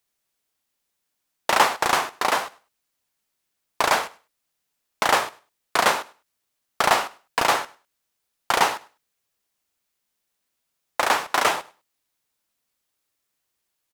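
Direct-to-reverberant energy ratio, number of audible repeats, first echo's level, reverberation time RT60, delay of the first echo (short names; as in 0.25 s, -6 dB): none, 1, -21.5 dB, none, 0.101 s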